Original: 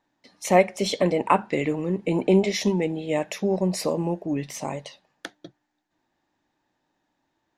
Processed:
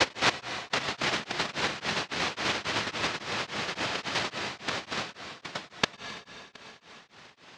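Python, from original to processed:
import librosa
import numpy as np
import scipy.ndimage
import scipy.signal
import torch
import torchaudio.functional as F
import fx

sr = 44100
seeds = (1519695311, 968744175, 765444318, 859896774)

y = fx.block_reorder(x, sr, ms=146.0, group=5)
y = fx.recorder_agc(y, sr, target_db=-14.0, rise_db_per_s=34.0, max_gain_db=30)
y = fx.noise_vocoder(y, sr, seeds[0], bands=1)
y = fx.air_absorb(y, sr, metres=210.0)
y = y + 10.0 ** (-14.5 / 20.0) * np.pad(y, (int(718 * sr / 1000.0), 0))[:len(y)]
y = fx.rev_plate(y, sr, seeds[1], rt60_s=2.6, hf_ratio=0.95, predelay_ms=90, drr_db=5.0)
y = y * np.abs(np.cos(np.pi * 3.6 * np.arange(len(y)) / sr))
y = F.gain(torch.from_numpy(y), -2.0).numpy()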